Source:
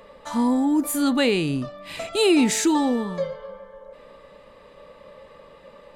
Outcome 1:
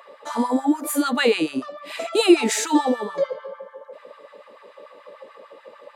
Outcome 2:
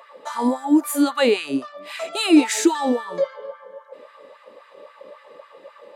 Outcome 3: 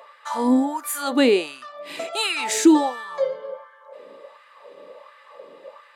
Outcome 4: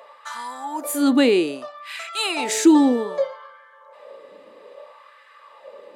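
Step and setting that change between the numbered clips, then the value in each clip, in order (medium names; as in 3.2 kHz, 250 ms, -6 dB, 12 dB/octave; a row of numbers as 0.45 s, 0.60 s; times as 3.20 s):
LFO high-pass, rate: 6.8 Hz, 3.7 Hz, 1.4 Hz, 0.62 Hz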